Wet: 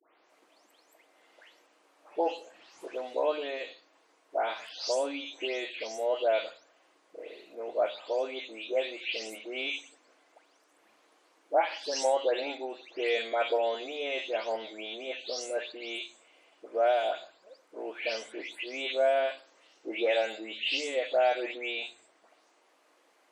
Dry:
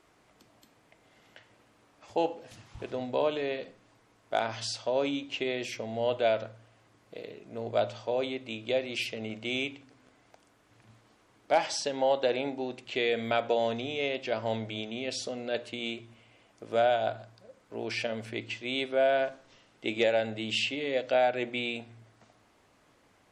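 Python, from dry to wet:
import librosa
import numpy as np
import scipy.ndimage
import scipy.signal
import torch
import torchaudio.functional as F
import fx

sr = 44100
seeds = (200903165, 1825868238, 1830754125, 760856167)

y = fx.spec_delay(x, sr, highs='late', ms=296)
y = scipy.signal.sosfilt(scipy.signal.butter(4, 330.0, 'highpass', fs=sr, output='sos'), y)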